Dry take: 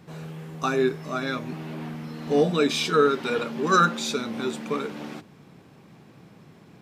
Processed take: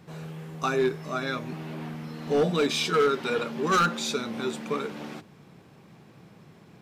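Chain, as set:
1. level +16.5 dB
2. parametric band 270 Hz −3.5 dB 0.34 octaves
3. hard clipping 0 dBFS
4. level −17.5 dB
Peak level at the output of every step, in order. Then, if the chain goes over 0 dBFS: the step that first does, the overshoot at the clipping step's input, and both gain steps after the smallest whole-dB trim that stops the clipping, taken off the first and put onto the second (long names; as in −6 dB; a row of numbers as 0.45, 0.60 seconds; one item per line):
+10.0, +10.0, 0.0, −17.5 dBFS
step 1, 10.0 dB
step 1 +6.5 dB, step 4 −7.5 dB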